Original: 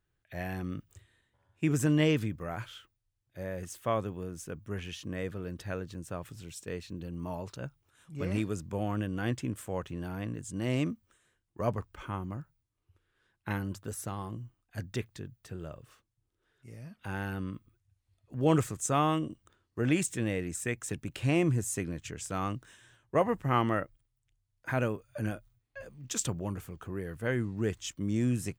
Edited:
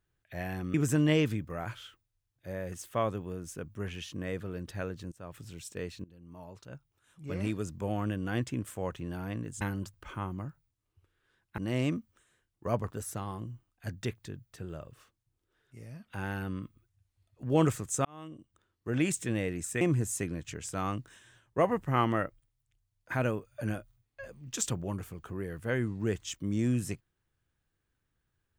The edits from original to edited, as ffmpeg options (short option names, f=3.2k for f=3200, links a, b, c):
-filter_complex "[0:a]asplit=10[a][b][c][d][e][f][g][h][i][j];[a]atrim=end=0.742[k];[b]atrim=start=1.648:end=6.03,asetpts=PTS-STARTPTS,afade=t=out:st=4.378:d=0.004:c=hsin:silence=0.112202[l];[c]atrim=start=6.03:end=6.95,asetpts=PTS-STARTPTS,afade=t=in:d=0.32:silence=0.112202,afade=t=out:st=0.916:d=0.004:c=hsin:silence=0.11885[m];[d]atrim=start=6.95:end=10.522,asetpts=PTS-STARTPTS,afade=t=in:d=1.75:silence=0.11885[n];[e]atrim=start=13.498:end=13.832[o];[f]atrim=start=11.858:end=13.502[p];[g]atrim=start=10.518:end=11.862[q];[h]atrim=start=13.828:end=18.96,asetpts=PTS-STARTPTS,afade=t=out:st=5.128:d=0.004:c=hsin[r];[i]atrim=start=18.96:end=20.722,asetpts=PTS-STARTPTS,afade=t=in:d=1.12[s];[j]atrim=start=21.378[t];[l][m][n]concat=n=3:v=0:a=1[u];[k][u]acrossfade=d=0.004:c1=hsin:c2=hsin[v];[v][o]acrossfade=d=0.004:c1=hsin:c2=hsin[w];[w][p]acrossfade=d=0.004:c1=hsin:c2=hsin[x];[x][q]acrossfade=d=0.004:c1=hsin:c2=hsin[y];[r][s]concat=n=2:v=0:a=1[z];[y][z]acrossfade=d=0.004:c1=hsin:c2=hsin[aa];[aa][t]acrossfade=d=0.004:c1=hsin:c2=hsin"